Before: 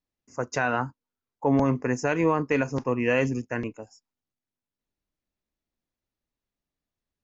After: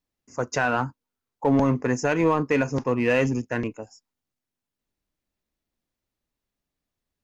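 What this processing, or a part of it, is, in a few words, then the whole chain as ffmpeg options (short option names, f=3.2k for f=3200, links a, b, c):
parallel distortion: -filter_complex "[0:a]asplit=2[a][b];[b]asoftclip=type=hard:threshold=-25dB,volume=-6dB[c];[a][c]amix=inputs=2:normalize=0"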